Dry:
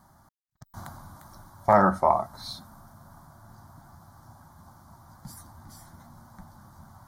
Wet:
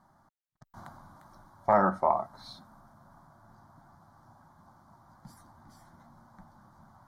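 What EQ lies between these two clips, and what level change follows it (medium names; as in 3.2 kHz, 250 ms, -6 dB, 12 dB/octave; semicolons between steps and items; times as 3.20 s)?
low-pass 2.4 kHz 6 dB/octave; peaking EQ 64 Hz -11 dB 1.7 oct; -3.5 dB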